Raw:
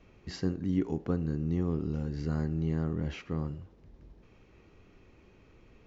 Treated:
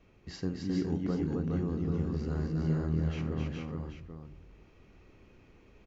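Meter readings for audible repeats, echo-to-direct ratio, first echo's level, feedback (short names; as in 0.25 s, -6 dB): 5, 1.0 dB, -14.5 dB, no steady repeat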